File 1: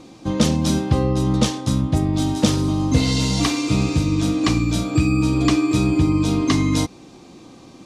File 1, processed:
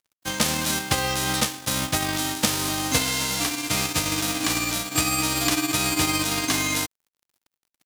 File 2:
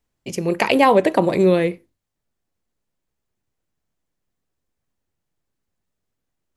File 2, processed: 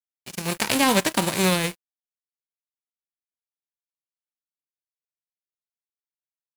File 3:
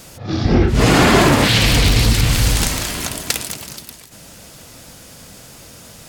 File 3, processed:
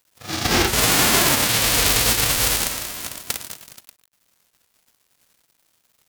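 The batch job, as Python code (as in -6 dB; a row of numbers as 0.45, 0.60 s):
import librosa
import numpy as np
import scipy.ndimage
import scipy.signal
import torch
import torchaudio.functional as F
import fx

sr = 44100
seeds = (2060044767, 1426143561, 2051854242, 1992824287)

y = fx.envelope_flatten(x, sr, power=0.3)
y = np.sign(y) * np.maximum(np.abs(y) - 10.0 ** (-34.0 / 20.0), 0.0)
y = F.gain(torch.from_numpy(y), -5.0).numpy()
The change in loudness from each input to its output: -3.5, -4.5, -2.5 LU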